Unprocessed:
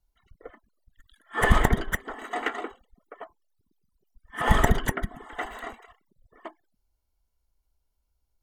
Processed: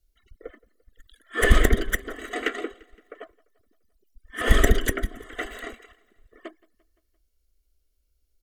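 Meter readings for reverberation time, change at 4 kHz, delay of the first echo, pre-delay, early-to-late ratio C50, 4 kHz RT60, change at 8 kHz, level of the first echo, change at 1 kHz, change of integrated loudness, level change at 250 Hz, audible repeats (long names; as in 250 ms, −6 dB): no reverb audible, +4.5 dB, 172 ms, no reverb audible, no reverb audible, no reverb audible, +5.5 dB, −24.0 dB, −5.5 dB, +1.5 dB, +1.5 dB, 3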